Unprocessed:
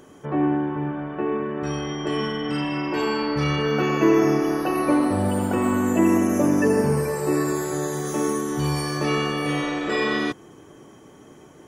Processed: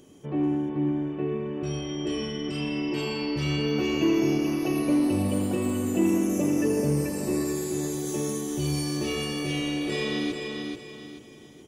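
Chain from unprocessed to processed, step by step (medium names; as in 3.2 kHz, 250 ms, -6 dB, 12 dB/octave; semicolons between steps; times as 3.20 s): FFT filter 310 Hz 0 dB, 1.5 kHz -13 dB, 2.7 kHz +1 dB; in parallel at -7 dB: hard clipper -17.5 dBFS, distortion -15 dB; on the sum: feedback delay 436 ms, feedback 35%, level -5 dB; trim -6.5 dB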